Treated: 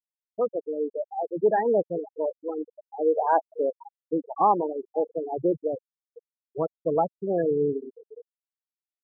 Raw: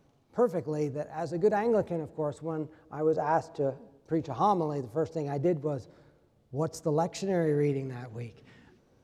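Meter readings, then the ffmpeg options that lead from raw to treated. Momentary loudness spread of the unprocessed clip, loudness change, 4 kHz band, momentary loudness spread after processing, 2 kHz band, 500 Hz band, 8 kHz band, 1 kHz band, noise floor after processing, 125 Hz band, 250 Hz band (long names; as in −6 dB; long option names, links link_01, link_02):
12 LU, +3.5 dB, below −30 dB, 12 LU, 0.0 dB, +4.0 dB, below −30 dB, +5.5 dB, below −85 dBFS, −8.0 dB, +0.5 dB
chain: -filter_complex "[0:a]aeval=exprs='val(0)+0.5*0.01*sgn(val(0))':channel_layout=same,dynaudnorm=framelen=300:gausssize=3:maxgain=10dB,highpass=170,lowshelf=frequency=340:gain=-8.5,asplit=2[link_01][link_02];[link_02]aecho=0:1:512|1024|1536|2048|2560:0.133|0.0773|0.0449|0.026|0.0151[link_03];[link_01][link_03]amix=inputs=2:normalize=0,afftfilt=real='re*gte(hypot(re,im),0.224)':imag='im*gte(hypot(re,im),0.224)':win_size=1024:overlap=0.75,volume=-3dB"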